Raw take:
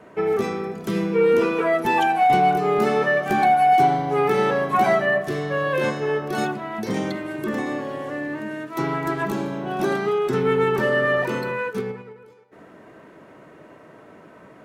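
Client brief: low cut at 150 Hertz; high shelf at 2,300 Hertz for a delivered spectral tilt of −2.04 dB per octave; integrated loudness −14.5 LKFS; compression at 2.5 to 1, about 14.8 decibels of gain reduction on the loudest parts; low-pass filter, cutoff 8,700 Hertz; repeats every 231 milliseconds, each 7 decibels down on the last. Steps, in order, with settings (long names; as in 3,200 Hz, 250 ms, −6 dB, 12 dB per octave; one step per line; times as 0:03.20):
high-pass filter 150 Hz
low-pass filter 8,700 Hz
high-shelf EQ 2,300 Hz −7 dB
downward compressor 2.5 to 1, threshold −38 dBFS
repeating echo 231 ms, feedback 45%, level −7 dB
level +20 dB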